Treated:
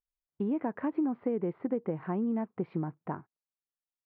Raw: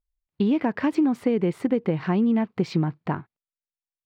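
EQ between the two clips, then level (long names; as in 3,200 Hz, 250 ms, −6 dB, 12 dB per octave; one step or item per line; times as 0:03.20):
low-pass filter 1,400 Hz 12 dB per octave
high-frequency loss of the air 270 metres
low-shelf EQ 170 Hz −11 dB
−5.5 dB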